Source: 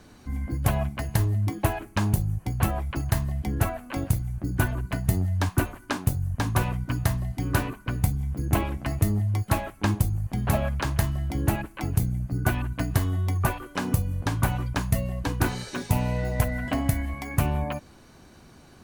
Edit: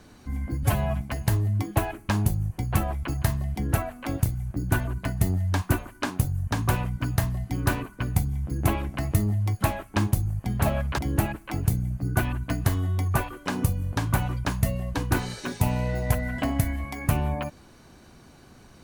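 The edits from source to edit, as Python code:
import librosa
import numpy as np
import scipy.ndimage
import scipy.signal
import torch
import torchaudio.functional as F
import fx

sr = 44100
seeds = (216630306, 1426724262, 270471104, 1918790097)

y = fx.edit(x, sr, fx.stretch_span(start_s=0.63, length_s=0.25, factor=1.5),
    fx.cut(start_s=10.86, length_s=0.42), tone=tone)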